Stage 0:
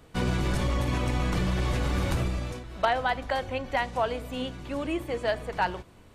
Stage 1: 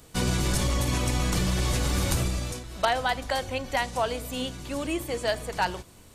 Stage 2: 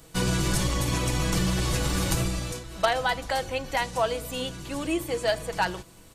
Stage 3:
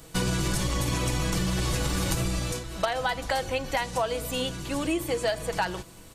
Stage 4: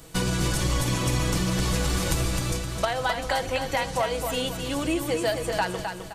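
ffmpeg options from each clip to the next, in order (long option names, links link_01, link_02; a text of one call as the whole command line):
ffmpeg -i in.wav -af "bass=frequency=250:gain=1,treble=frequency=4000:gain=14" out.wav
ffmpeg -i in.wav -af "aecho=1:1:6.1:0.42" out.wav
ffmpeg -i in.wav -af "acompressor=threshold=-26dB:ratio=6,volume=3dB" out.wav
ffmpeg -i in.wav -af "aecho=1:1:260|520|780|1040:0.473|0.175|0.0648|0.024,volume=1dB" out.wav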